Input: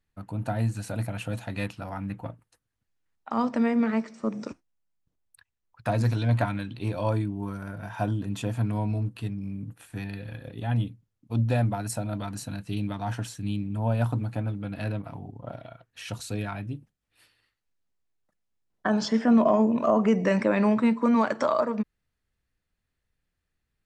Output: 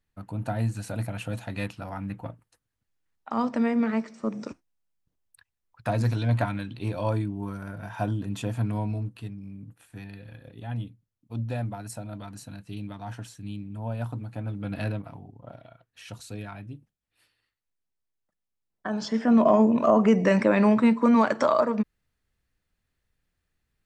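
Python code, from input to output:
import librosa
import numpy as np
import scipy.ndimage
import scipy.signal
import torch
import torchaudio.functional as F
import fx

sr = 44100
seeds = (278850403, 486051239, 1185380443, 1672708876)

y = fx.gain(x, sr, db=fx.line((8.76, -0.5), (9.42, -6.5), (14.29, -6.5), (14.75, 3.0), (15.28, -6.0), (18.88, -6.0), (19.52, 2.5)))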